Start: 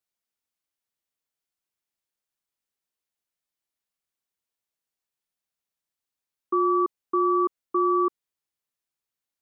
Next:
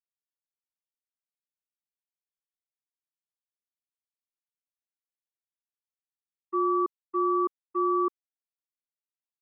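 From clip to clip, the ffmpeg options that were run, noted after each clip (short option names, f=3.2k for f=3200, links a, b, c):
-af "agate=range=-33dB:threshold=-19dB:ratio=3:detection=peak,volume=-1.5dB"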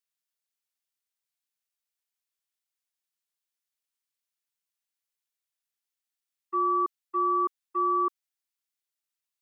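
-af "tiltshelf=f=850:g=-7.5"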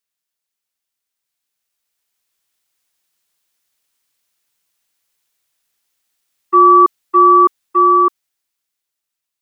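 -af "dynaudnorm=f=360:g=11:m=11.5dB,volume=6.5dB"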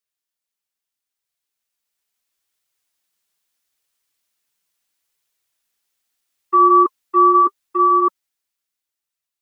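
-af "flanger=delay=1.5:depth=3.8:regen=-54:speed=0.76:shape=triangular"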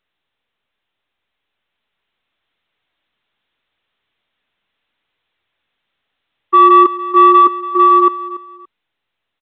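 -filter_complex "[0:a]asplit=2[a][b];[b]volume=11dB,asoftclip=hard,volume=-11dB,volume=-3.5dB[c];[a][c]amix=inputs=2:normalize=0,aecho=1:1:286|572:0.158|0.0396,volume=1dB" -ar 8000 -c:a pcm_mulaw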